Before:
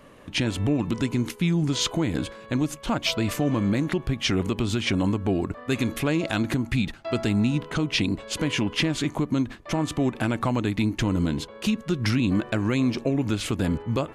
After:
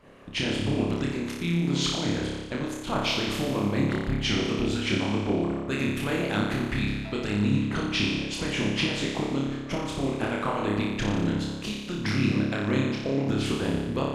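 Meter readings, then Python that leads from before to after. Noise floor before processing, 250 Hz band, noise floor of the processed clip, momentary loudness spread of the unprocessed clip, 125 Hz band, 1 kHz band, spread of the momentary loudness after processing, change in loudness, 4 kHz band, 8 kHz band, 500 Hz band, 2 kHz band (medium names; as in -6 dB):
-45 dBFS, -2.5 dB, -36 dBFS, 4 LU, -3.0 dB, 0.0 dB, 5 LU, -2.0 dB, -0.5 dB, -3.5 dB, -0.5 dB, 0.0 dB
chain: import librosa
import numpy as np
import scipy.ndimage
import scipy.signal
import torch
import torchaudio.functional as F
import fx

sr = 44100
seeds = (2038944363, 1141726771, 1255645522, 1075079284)

y = fx.high_shelf(x, sr, hz=7100.0, db=-10.0)
y = fx.room_flutter(y, sr, wall_m=5.0, rt60_s=1.4)
y = fx.hpss(y, sr, part='harmonic', gain_db=-14)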